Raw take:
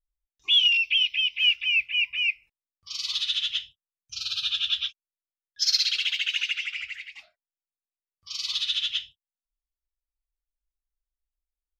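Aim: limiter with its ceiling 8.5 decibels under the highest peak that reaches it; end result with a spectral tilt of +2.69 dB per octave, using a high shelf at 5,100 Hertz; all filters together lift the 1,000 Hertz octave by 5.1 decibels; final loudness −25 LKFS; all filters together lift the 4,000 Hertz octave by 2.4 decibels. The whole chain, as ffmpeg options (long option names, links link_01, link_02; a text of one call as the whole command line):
ffmpeg -i in.wav -af "equalizer=frequency=1000:width_type=o:gain=7.5,equalizer=frequency=4000:width_type=o:gain=6,highshelf=frequency=5100:gain=-8,volume=-1.5dB,alimiter=limit=-17dB:level=0:latency=1" out.wav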